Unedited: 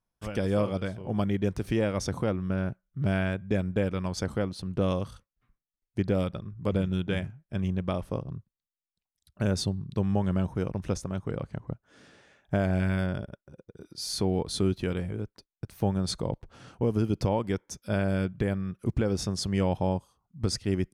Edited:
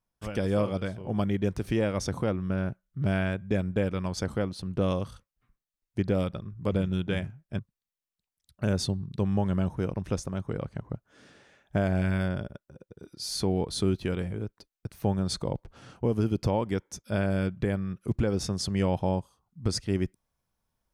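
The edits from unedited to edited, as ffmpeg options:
-filter_complex "[0:a]asplit=2[s0][s1];[s0]atrim=end=7.592[s2];[s1]atrim=start=8.368[s3];[s2][s3]acrossfade=d=0.004:c1=hsin:c2=hsin"

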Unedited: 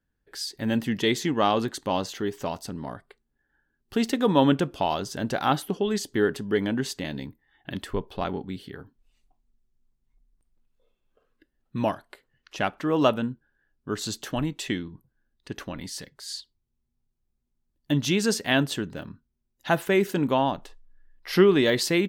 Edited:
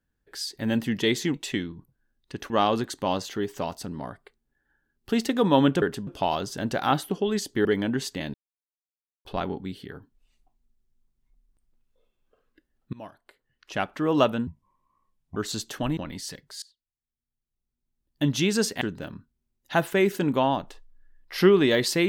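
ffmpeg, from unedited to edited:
-filter_complex "[0:a]asplit=14[s0][s1][s2][s3][s4][s5][s6][s7][s8][s9][s10][s11][s12][s13];[s0]atrim=end=1.342[s14];[s1]atrim=start=14.498:end=15.662[s15];[s2]atrim=start=1.338:end=4.662[s16];[s3]atrim=start=6.238:end=6.492[s17];[s4]atrim=start=4.658:end=6.242[s18];[s5]atrim=start=6.488:end=7.18,asetpts=PTS-STARTPTS,afade=t=out:st=0.688:d=0.004:c=hsin[s19];[s6]atrim=start=7.18:end=8.09,asetpts=PTS-STARTPTS,volume=0[s20];[s7]atrim=start=8.09:end=11.77,asetpts=PTS-STARTPTS,afade=t=in:d=0.004:c=hsin,afade=t=out:st=3.676:d=0.004:c=hsin:silence=0.0630957[s21];[s8]atrim=start=11.77:end=13.314,asetpts=PTS-STARTPTS,afade=t=in:d=1.03:silence=0.0630957[s22];[s9]atrim=start=13.31:end=13.89,asetpts=PTS-STARTPTS,asetrate=28665,aresample=44100[s23];[s10]atrim=start=13.886:end=14.502[s24];[s11]atrim=start=15.658:end=16.31,asetpts=PTS-STARTPTS,afade=t=out:st=0.648:d=0.004:c=hsin:silence=0.0707946[s25];[s12]atrim=start=16.31:end=18.502,asetpts=PTS-STARTPTS,afade=t=in:d=1.62:c=qua:silence=0.0707946[s26];[s13]atrim=start=18.758[s27];[s14][s15]acrossfade=d=0.004:c1=hsin:c2=hsin[s28];[s28][s16]acrossfade=d=0.004:c1=hsin:c2=hsin[s29];[s29][s17]acrossfade=d=0.004:c1=hsin:c2=hsin[s30];[s30][s18]acrossfade=d=0.004:c1=hsin:c2=hsin[s31];[s19][s20][s21][s22]concat=n=4:v=0:a=1[s32];[s31][s32]acrossfade=d=0.004:c1=hsin:c2=hsin[s33];[s33][s23]acrossfade=d=0.004:c1=hsin:c2=hsin[s34];[s34][s24]acrossfade=d=0.004:c1=hsin:c2=hsin[s35];[s25][s26]concat=n=2:v=0:a=1[s36];[s35][s36]acrossfade=d=0.004:c1=hsin:c2=hsin[s37];[s37][s27]acrossfade=d=0.004:c1=hsin:c2=hsin"

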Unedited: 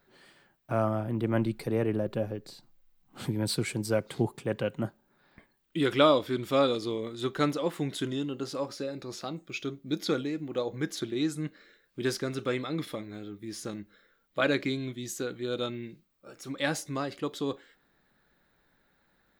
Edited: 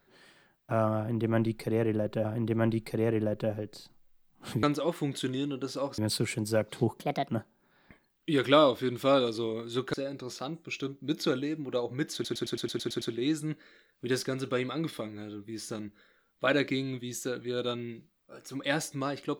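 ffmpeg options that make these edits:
-filter_complex "[0:a]asplit=15[s0][s1][s2][s3][s4][s5][s6][s7][s8][s9][s10][s11][s12][s13][s14];[s0]atrim=end=2.252[s15];[s1]atrim=start=0.978:end=3.362[s16];[s2]atrim=start=7.408:end=8.762[s17];[s3]atrim=start=3.358:end=4.384[s18];[s4]atrim=start=4.38:end=4.76,asetpts=PTS-STARTPTS,asetrate=58653,aresample=44100[s19];[s5]atrim=start=4.756:end=7.412[s20];[s6]atrim=start=8.758:end=11.072[s21];[s7]atrim=start=10.958:end=11.072[s22];[s8]atrim=start=10.958:end=11.072[s23];[s9]atrim=start=10.958:end=11.072[s24];[s10]atrim=start=10.958:end=11.072[s25];[s11]atrim=start=10.958:end=11.072[s26];[s12]atrim=start=10.958:end=11.072[s27];[s13]atrim=start=10.958:end=11.072[s28];[s14]atrim=start=10.958[s29];[s15][s16]acrossfade=d=0.004:c1=hsin:c2=hsin[s30];[s30][s17]acrossfade=d=0.004:c1=hsin:c2=hsin[s31];[s31][s18]acrossfade=d=0.004:c1=hsin:c2=hsin[s32];[s32][s19]acrossfade=d=0.004:c1=hsin:c2=hsin[s33];[s33][s20]acrossfade=d=0.004:c1=hsin:c2=hsin[s34];[s34][s21]acrossfade=d=0.004:c1=hsin:c2=hsin[s35];[s35][s22]acrossfade=d=0.004:c1=hsin:c2=hsin[s36];[s36][s23]acrossfade=d=0.004:c1=hsin:c2=hsin[s37];[s37][s24]acrossfade=d=0.004:c1=hsin:c2=hsin[s38];[s38][s25]acrossfade=d=0.004:c1=hsin:c2=hsin[s39];[s39][s26]acrossfade=d=0.004:c1=hsin:c2=hsin[s40];[s40][s27]acrossfade=d=0.004:c1=hsin:c2=hsin[s41];[s41][s28]acrossfade=d=0.004:c1=hsin:c2=hsin[s42];[s42][s29]acrossfade=d=0.004:c1=hsin:c2=hsin"

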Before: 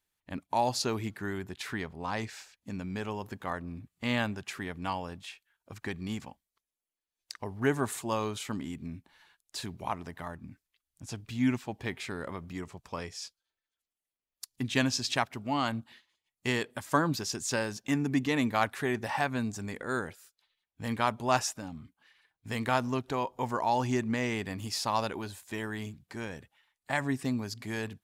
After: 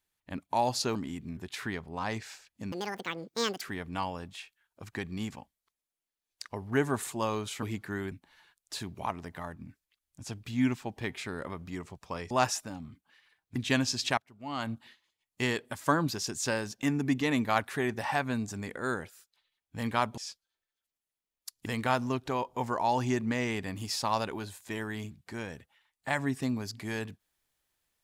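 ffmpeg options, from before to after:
-filter_complex "[0:a]asplit=12[s0][s1][s2][s3][s4][s5][s6][s7][s8][s9][s10][s11];[s0]atrim=end=0.952[s12];[s1]atrim=start=8.518:end=8.942[s13];[s2]atrim=start=1.438:end=2.794[s14];[s3]atrim=start=2.79:end=4.51,asetpts=PTS-STARTPTS,asetrate=84672,aresample=44100,atrim=end_sample=39506,asetpts=PTS-STARTPTS[s15];[s4]atrim=start=4.506:end=8.522[s16];[s5]atrim=start=0.948:end=1.442[s17];[s6]atrim=start=8.938:end=13.132[s18];[s7]atrim=start=21.228:end=22.482[s19];[s8]atrim=start=14.608:end=15.23,asetpts=PTS-STARTPTS,afade=t=out:st=0.618:d=0.004:c=hsin:silence=0.0891251[s20];[s9]atrim=start=15.23:end=21.232,asetpts=PTS-STARTPTS,afade=t=in:d=0.55:c=qua:silence=0.0891251[s21];[s10]atrim=start=13.128:end=14.612[s22];[s11]atrim=start=22.478[s23];[s12][s13]acrossfade=d=0.004:c1=hsin:c2=hsin[s24];[s24][s14]acrossfade=d=0.004:c1=hsin:c2=hsin[s25];[s25][s15]acrossfade=d=0.004:c1=hsin:c2=hsin[s26];[s26][s16]acrossfade=d=0.004:c1=hsin:c2=hsin[s27];[s27][s17]acrossfade=d=0.004:c1=hsin:c2=hsin[s28];[s28][s18]acrossfade=d=0.004:c1=hsin:c2=hsin[s29];[s29][s19]acrossfade=d=0.004:c1=hsin:c2=hsin[s30];[s20][s21]concat=n=2:v=0:a=1[s31];[s30][s31]acrossfade=d=0.004:c1=hsin:c2=hsin[s32];[s32][s22]acrossfade=d=0.004:c1=hsin:c2=hsin[s33];[s33][s23]acrossfade=d=0.004:c1=hsin:c2=hsin"

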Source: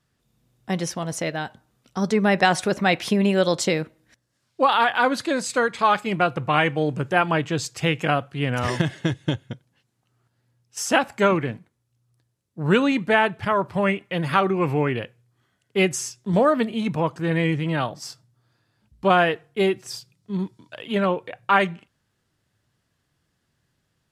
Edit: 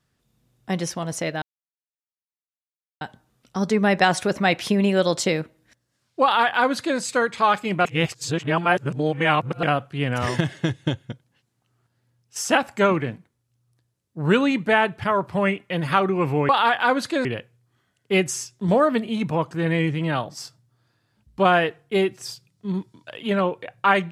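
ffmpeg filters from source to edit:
-filter_complex "[0:a]asplit=6[s0][s1][s2][s3][s4][s5];[s0]atrim=end=1.42,asetpts=PTS-STARTPTS,afade=t=out:st=1.416:d=0.004:c=hsin,apad=pad_dur=1.59[s6];[s1]atrim=start=1.42:end=6.262,asetpts=PTS-STARTPTS,afade=t=in:d=0.004:c=hsin[s7];[s2]atrim=start=6.258:end=8.042,asetpts=PTS-STARTPTS,areverse[s8];[s3]atrim=start=8.038:end=14.902[s9];[s4]atrim=start=4.638:end=5.402[s10];[s5]atrim=start=14.898[s11];[s6][s7]concat=n=2:v=0:a=1[s12];[s12][s8]acrossfade=d=0.004:c1=hsin:c2=hsin[s13];[s13][s9]acrossfade=d=0.004:c1=hsin:c2=hsin[s14];[s14][s10]acrossfade=d=0.004:c1=hsin:c2=hsin[s15];[s15][s11]acrossfade=d=0.004:c1=hsin:c2=hsin"

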